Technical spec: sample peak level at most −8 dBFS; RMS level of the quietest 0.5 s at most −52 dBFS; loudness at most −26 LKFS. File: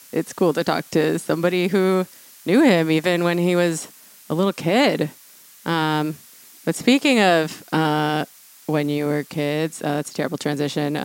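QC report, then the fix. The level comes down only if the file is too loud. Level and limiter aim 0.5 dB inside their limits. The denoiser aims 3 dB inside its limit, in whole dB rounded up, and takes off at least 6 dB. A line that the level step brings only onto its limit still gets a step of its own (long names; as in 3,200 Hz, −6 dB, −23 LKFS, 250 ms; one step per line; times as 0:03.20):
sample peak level −3.5 dBFS: out of spec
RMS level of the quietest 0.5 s −48 dBFS: out of spec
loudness −20.5 LKFS: out of spec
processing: level −6 dB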